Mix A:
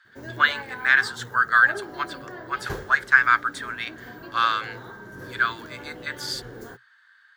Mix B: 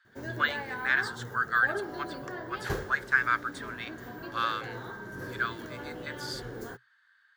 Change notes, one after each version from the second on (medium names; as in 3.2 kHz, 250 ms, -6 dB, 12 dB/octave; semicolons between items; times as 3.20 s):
speech -8.5 dB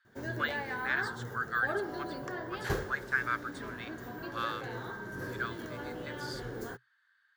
speech -6.0 dB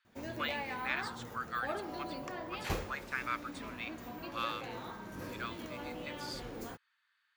master: add graphic EQ with 31 bands 125 Hz -11 dB, 400 Hz -10 dB, 1.6 kHz -12 dB, 2.5 kHz +10 dB